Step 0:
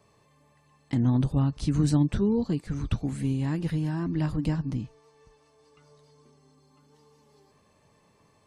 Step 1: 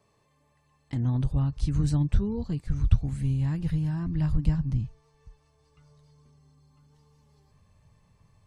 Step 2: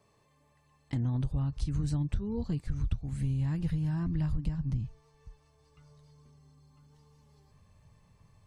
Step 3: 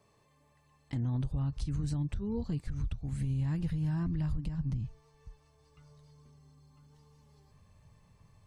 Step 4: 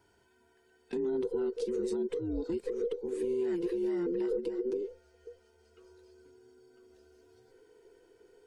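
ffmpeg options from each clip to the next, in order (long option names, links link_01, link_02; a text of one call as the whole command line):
ffmpeg -i in.wav -af "asubboost=boost=11:cutoff=100,volume=-5dB" out.wav
ffmpeg -i in.wav -af "acompressor=threshold=-27dB:ratio=6" out.wav
ffmpeg -i in.wav -af "alimiter=level_in=1.5dB:limit=-24dB:level=0:latency=1:release=95,volume=-1.5dB" out.wav
ffmpeg -i in.wav -af "afftfilt=real='real(if(between(b,1,1008),(2*floor((b-1)/24)+1)*24-b,b),0)':imag='imag(if(between(b,1,1008),(2*floor((b-1)/24)+1)*24-b,b),0)*if(between(b,1,1008),-1,1)':win_size=2048:overlap=0.75" out.wav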